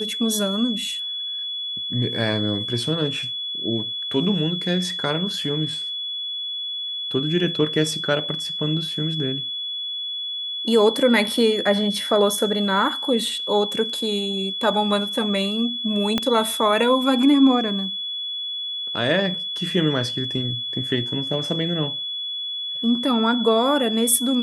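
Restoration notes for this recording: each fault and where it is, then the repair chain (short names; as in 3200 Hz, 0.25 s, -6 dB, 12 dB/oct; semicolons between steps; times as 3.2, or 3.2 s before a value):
tone 3400 Hz -26 dBFS
16.18 pop -7 dBFS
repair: de-click; notch 3400 Hz, Q 30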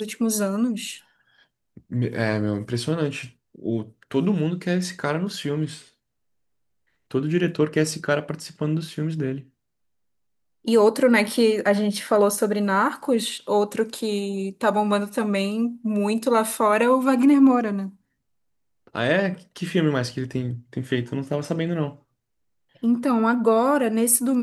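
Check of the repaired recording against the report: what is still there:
16.18 pop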